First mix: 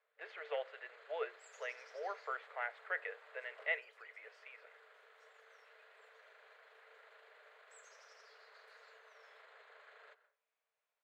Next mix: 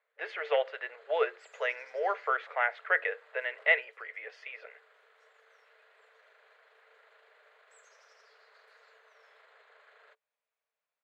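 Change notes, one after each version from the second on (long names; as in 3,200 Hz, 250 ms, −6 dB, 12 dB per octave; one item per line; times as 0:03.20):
speech +12.0 dB
second sound: send off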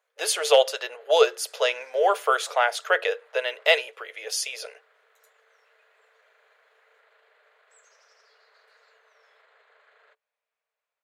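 speech: remove transistor ladder low-pass 2,200 Hz, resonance 65%
second sound +4.0 dB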